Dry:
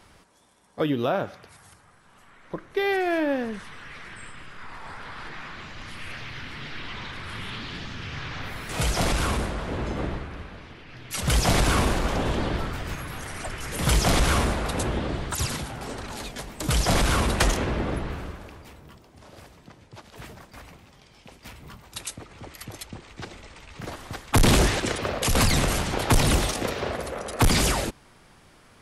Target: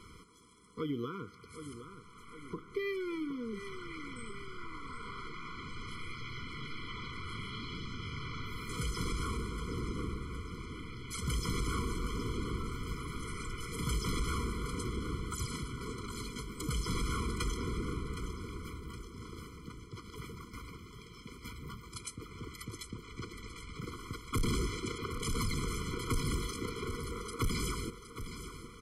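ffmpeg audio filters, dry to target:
-af "acompressor=threshold=-45dB:ratio=2,aecho=1:1:766|1532|2298|3064|3830:0.282|0.144|0.0733|0.0374|0.0191,afftfilt=real='re*eq(mod(floor(b*sr/1024/490),2),0)':imag='im*eq(mod(floor(b*sr/1024/490),2),0)':win_size=1024:overlap=0.75,volume=2dB"

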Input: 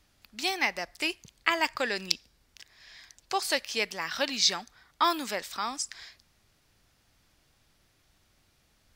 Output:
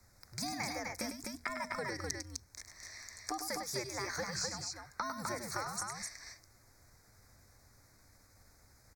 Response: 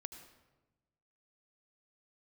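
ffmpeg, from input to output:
-filter_complex "[0:a]asuperstop=centerf=2600:order=4:qfactor=2.1,equalizer=f=3.1k:w=4.4:g=-15,acrossover=split=110[a][b];[b]acompressor=threshold=-39dB:ratio=12[c];[a][c]amix=inputs=2:normalize=0,asetrate=50951,aresample=44100,atempo=0.865537,afreqshift=-130,bandreject=f=60:t=h:w=6,bandreject=f=120:t=h:w=6,bandreject=f=180:t=h:w=6,bandreject=f=240:t=h:w=6,asplit=2[d][e];[e]aecho=0:1:101|254:0.422|0.668[f];[d][f]amix=inputs=2:normalize=0,volume=3dB"

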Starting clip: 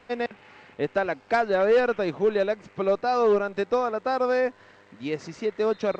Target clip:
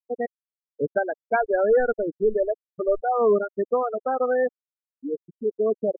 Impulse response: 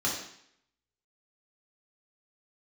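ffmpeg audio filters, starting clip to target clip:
-filter_complex "[0:a]asplit=2[a][b];[1:a]atrim=start_sample=2205,highshelf=f=3.8k:g=-5[c];[b][c]afir=irnorm=-1:irlink=0,volume=-31dB[d];[a][d]amix=inputs=2:normalize=0,asettb=1/sr,asplit=3[e][f][g];[e]atrim=end=1.004[h];[f]atrim=start=1:end=3.04,asetpts=PTS-STARTPTS,afade=t=in:d=0.004:c=qsin,afade=t=out:st=2.036:d=0.004:c=qsin,asubboost=boost=11.5:cutoff=55[i];[g]atrim=start=3.036[j];[h][i]acrossfade=d=0.004:c1=hsin:c2=qsin[k];[k][j]acrossfade=d=0.004:c1=qsin:c2=hsin,anlmdn=25.1,afftfilt=real='re*gte(hypot(re,im),0.158)':imag='im*gte(hypot(re,im),0.158)':win_size=1024:overlap=0.75,volume=1.5dB"

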